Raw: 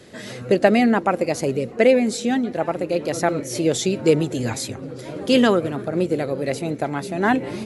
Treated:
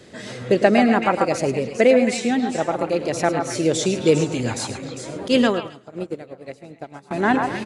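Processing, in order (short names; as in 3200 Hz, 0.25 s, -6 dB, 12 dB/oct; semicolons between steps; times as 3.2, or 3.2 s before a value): delay with a stepping band-pass 0.134 s, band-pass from 990 Hz, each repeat 1.4 oct, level -1.5 dB; downsampling 22050 Hz; echo 0.105 s -11.5 dB; 5.28–7.11 upward expander 2.5:1, over -28 dBFS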